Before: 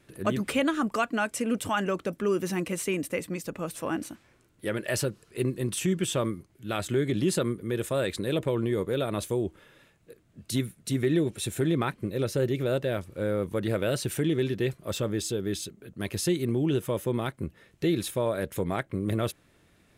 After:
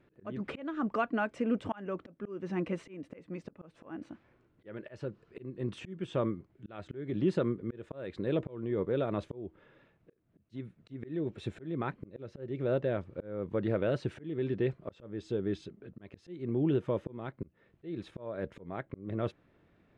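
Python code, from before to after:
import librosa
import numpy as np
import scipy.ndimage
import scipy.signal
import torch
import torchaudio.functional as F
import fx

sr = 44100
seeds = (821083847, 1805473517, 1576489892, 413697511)

y = fx.low_shelf(x, sr, hz=130.0, db=-6.0)
y = fx.auto_swell(y, sr, attack_ms=347.0)
y = fx.spacing_loss(y, sr, db_at_10k=37)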